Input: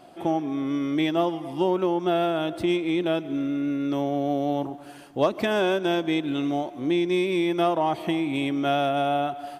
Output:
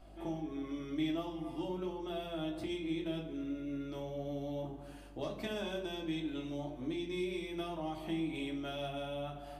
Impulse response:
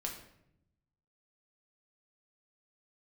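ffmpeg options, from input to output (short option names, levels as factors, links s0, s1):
-filter_complex "[0:a]acrossover=split=190|3000[s0][s1][s2];[s1]acompressor=threshold=0.0355:ratio=6[s3];[s0][s3][s2]amix=inputs=3:normalize=0,aeval=exprs='val(0)+0.00447*(sin(2*PI*50*n/s)+sin(2*PI*2*50*n/s)/2+sin(2*PI*3*50*n/s)/3+sin(2*PI*4*50*n/s)/4+sin(2*PI*5*50*n/s)/5)':c=same[s4];[1:a]atrim=start_sample=2205,asetrate=74970,aresample=44100[s5];[s4][s5]afir=irnorm=-1:irlink=0,volume=0.531"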